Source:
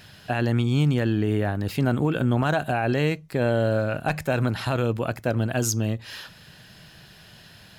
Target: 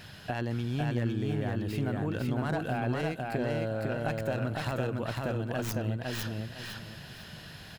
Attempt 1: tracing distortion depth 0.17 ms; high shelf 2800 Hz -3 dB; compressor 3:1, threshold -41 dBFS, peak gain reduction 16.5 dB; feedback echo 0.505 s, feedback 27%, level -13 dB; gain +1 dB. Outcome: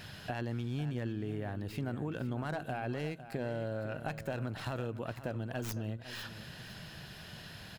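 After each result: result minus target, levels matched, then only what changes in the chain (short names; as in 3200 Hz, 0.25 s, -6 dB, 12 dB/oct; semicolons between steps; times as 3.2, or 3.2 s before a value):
echo-to-direct -10.5 dB; compressor: peak gain reduction +4.5 dB
change: feedback echo 0.505 s, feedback 27%, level -2.5 dB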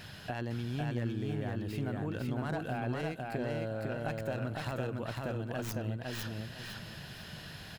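compressor: peak gain reduction +4.5 dB
change: compressor 3:1, threshold -34.5 dBFS, peak gain reduction 12.5 dB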